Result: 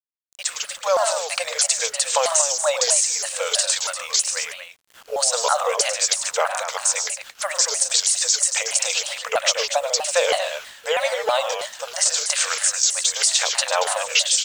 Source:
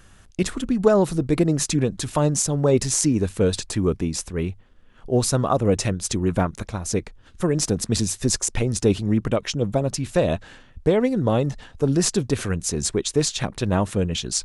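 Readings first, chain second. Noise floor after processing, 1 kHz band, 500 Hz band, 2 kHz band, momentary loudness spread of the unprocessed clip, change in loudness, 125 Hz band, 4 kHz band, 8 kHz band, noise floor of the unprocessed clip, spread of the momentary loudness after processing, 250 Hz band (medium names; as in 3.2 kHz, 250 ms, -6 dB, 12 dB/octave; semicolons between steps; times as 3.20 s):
-50 dBFS, +5.5 dB, -2.0 dB, +9.0 dB, 7 LU, +2.5 dB, under -40 dB, +9.5 dB, +8.5 dB, -50 dBFS, 9 LU, under -35 dB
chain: fade-in on the opening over 1.04 s; tilt EQ +4 dB/octave; compression 4:1, threshold -17 dBFS, peak gain reduction 9.5 dB; peak limiter -11.5 dBFS, peak gain reduction 9.5 dB; level rider gain up to 4 dB; FFT band-pass 490–8900 Hz; word length cut 8-bit, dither none; loudspeakers at several distances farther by 36 m -9 dB, 51 m -9 dB, 80 m -9 dB; vibrato with a chosen wave saw down 3.1 Hz, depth 250 cents; trim +1.5 dB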